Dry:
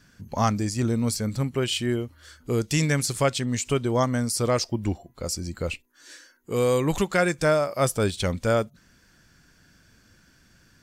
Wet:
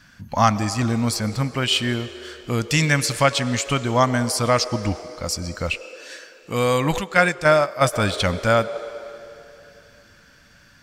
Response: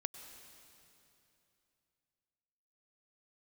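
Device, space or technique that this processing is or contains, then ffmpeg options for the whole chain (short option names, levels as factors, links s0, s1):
filtered reverb send: -filter_complex "[0:a]asplit=2[s0][s1];[s1]highpass=f=400:w=0.5412,highpass=f=400:w=1.3066,lowpass=5300[s2];[1:a]atrim=start_sample=2205[s3];[s2][s3]afir=irnorm=-1:irlink=0,volume=1.19[s4];[s0][s4]amix=inputs=2:normalize=0,asplit=3[s5][s6][s7];[s5]afade=t=out:st=6.98:d=0.02[s8];[s6]agate=range=0.398:threshold=0.1:ratio=16:detection=peak,afade=t=in:st=6.98:d=0.02,afade=t=out:st=7.92:d=0.02[s9];[s7]afade=t=in:st=7.92:d=0.02[s10];[s8][s9][s10]amix=inputs=3:normalize=0,volume=1.41"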